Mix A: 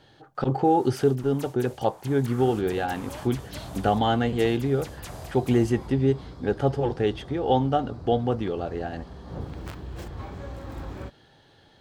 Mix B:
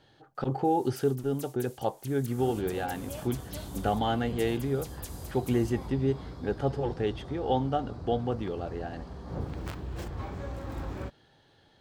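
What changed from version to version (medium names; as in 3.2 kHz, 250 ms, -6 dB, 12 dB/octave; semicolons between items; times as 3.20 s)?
speech -5.5 dB; first sound: add differentiator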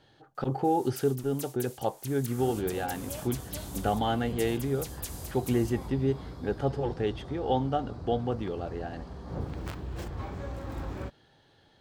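first sound +5.0 dB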